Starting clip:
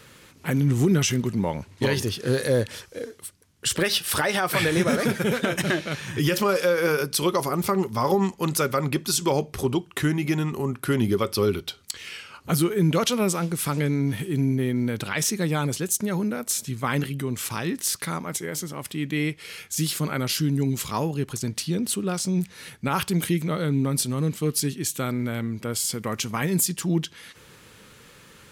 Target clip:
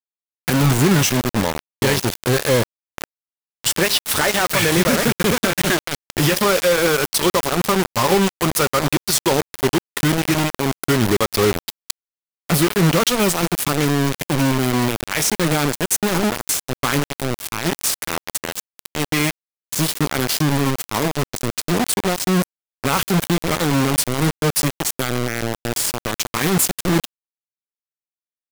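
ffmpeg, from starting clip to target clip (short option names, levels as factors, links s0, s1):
-af "acrusher=bits=3:mix=0:aa=0.000001,volume=1.68"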